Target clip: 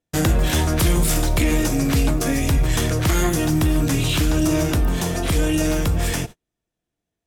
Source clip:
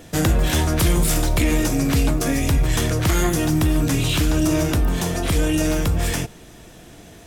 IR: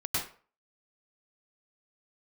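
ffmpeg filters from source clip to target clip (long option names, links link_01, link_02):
-af "agate=range=-40dB:threshold=-31dB:ratio=16:detection=peak"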